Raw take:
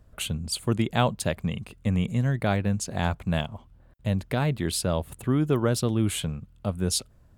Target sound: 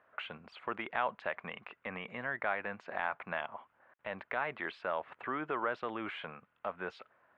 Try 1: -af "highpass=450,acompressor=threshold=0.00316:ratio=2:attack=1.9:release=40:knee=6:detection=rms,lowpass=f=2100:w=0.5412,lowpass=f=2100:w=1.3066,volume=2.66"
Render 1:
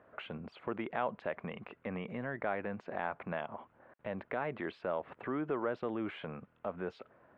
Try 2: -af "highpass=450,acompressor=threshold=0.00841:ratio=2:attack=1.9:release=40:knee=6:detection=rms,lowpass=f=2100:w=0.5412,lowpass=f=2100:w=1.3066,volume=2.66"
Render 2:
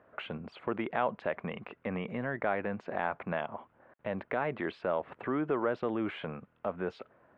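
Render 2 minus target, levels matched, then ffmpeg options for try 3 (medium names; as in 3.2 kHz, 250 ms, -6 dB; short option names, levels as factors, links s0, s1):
500 Hz band +3.0 dB
-af "highpass=1000,acompressor=threshold=0.00841:ratio=2:attack=1.9:release=40:knee=6:detection=rms,lowpass=f=2100:w=0.5412,lowpass=f=2100:w=1.3066,volume=2.66"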